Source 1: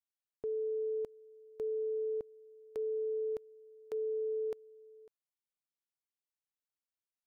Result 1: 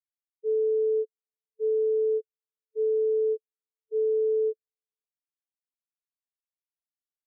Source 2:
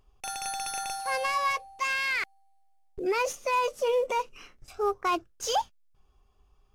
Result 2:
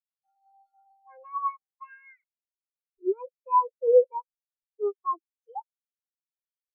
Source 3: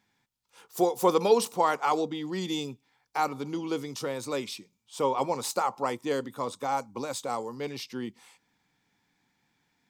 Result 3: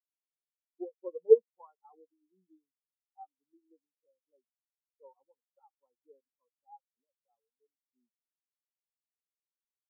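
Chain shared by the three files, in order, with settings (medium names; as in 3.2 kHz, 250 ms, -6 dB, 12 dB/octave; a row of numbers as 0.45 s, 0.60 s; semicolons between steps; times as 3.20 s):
low-pass that closes with the level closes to 2.7 kHz; spectral contrast expander 4:1; normalise loudness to -27 LUFS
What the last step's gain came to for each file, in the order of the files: +10.0 dB, +8.5 dB, +2.5 dB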